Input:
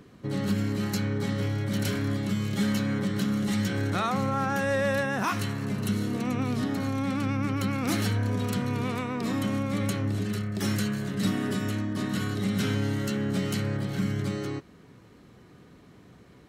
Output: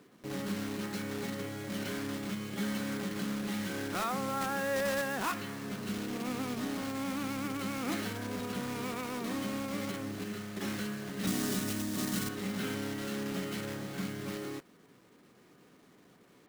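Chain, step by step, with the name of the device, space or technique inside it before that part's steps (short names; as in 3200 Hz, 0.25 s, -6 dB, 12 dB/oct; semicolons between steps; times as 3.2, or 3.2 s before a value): early digital voice recorder (BPF 210–3500 Hz; block floating point 3-bit); 11.27–12.29 tone controls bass +6 dB, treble +11 dB; gain -5.5 dB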